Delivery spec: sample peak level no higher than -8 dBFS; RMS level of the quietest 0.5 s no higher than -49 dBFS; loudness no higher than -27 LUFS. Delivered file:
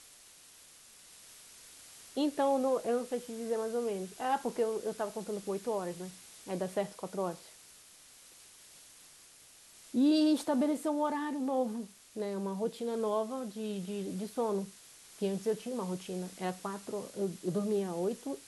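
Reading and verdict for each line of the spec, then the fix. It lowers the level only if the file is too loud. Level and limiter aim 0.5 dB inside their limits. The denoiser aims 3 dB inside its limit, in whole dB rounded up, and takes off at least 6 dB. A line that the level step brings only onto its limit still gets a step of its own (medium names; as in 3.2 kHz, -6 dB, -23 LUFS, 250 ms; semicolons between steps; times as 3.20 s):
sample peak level -19.0 dBFS: pass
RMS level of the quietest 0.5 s -58 dBFS: pass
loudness -34.5 LUFS: pass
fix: none needed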